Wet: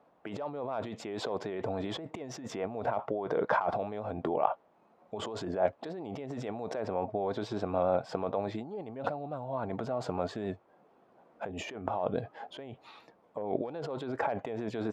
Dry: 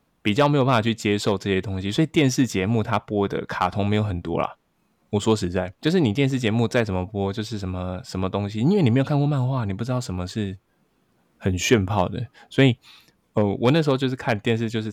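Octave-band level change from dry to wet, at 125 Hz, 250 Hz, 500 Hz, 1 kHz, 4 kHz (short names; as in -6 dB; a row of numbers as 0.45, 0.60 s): -20.5, -16.5, -9.0, -6.5, -17.0 dB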